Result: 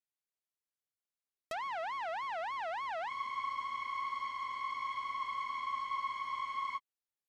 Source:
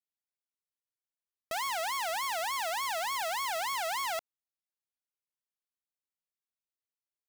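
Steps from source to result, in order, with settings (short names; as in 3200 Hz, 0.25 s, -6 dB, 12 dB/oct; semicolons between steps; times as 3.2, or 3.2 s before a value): treble ducked by the level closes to 2000 Hz, closed at -31.5 dBFS; spectral freeze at 3.11, 3.66 s; gain -3.5 dB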